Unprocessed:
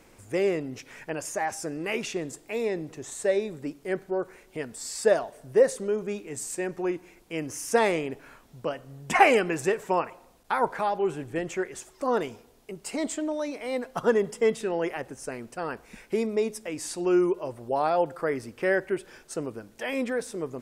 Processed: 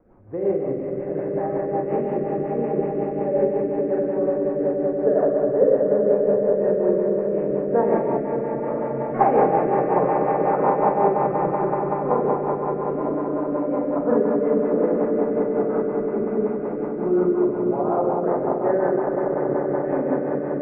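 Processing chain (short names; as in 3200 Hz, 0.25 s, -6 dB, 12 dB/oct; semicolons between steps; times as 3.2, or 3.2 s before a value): ending faded out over 0.70 s; LPF 1200 Hz 24 dB/oct; swelling echo 95 ms, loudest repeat 8, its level -10 dB; Schroeder reverb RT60 2.2 s, combs from 30 ms, DRR -5 dB; rotary speaker horn 5.5 Hz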